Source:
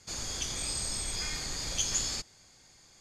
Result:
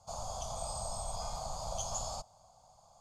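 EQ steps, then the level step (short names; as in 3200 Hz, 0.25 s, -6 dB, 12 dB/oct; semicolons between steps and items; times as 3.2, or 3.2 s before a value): EQ curve 110 Hz 0 dB, 200 Hz -4 dB, 350 Hz -22 dB, 660 Hz +15 dB, 1200 Hz +4 dB, 1800 Hz -28 dB, 3100 Hz -13 dB, 8900 Hz -6 dB, 13000 Hz -8 dB; -1.5 dB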